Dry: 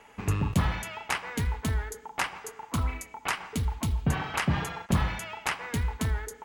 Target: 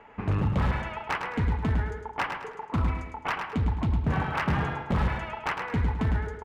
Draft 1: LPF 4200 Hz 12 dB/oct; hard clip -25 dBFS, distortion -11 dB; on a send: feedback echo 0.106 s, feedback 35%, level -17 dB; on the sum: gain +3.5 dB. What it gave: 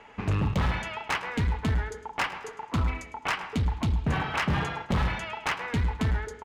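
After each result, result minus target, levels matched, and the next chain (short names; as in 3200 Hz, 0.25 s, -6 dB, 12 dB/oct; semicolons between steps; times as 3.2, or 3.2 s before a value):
echo-to-direct -10.5 dB; 4000 Hz band +6.0 dB
LPF 4200 Hz 12 dB/oct; hard clip -25 dBFS, distortion -11 dB; on a send: feedback echo 0.106 s, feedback 35%, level -6.5 dB; on the sum: gain +3.5 dB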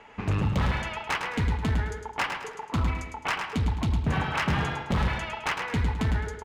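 4000 Hz band +6.0 dB
LPF 1900 Hz 12 dB/oct; hard clip -25 dBFS, distortion -11 dB; on a send: feedback echo 0.106 s, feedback 35%, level -6.5 dB; on the sum: gain +3.5 dB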